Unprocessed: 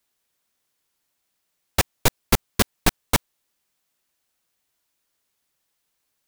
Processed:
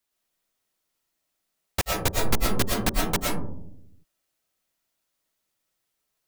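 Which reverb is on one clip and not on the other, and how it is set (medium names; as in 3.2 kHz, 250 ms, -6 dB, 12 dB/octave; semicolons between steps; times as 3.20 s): algorithmic reverb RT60 0.7 s, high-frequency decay 0.25×, pre-delay 75 ms, DRR -2 dB; trim -6.5 dB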